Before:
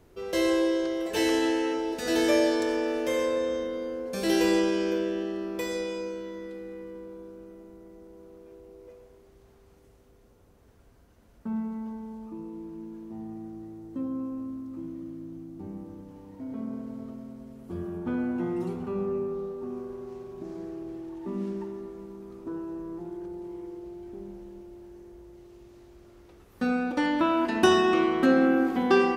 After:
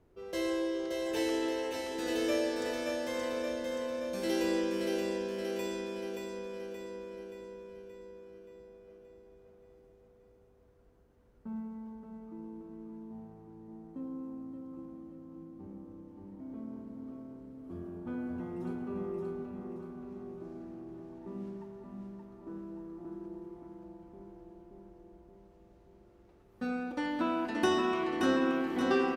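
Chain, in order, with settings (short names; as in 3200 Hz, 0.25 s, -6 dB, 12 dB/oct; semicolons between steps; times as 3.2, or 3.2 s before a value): feedback echo 0.576 s, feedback 57%, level -4 dB; mismatched tape noise reduction decoder only; gain -8.5 dB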